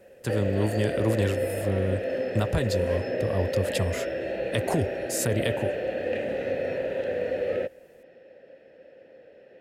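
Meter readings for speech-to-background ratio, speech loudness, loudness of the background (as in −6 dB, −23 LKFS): 0.0 dB, −29.5 LKFS, −29.5 LKFS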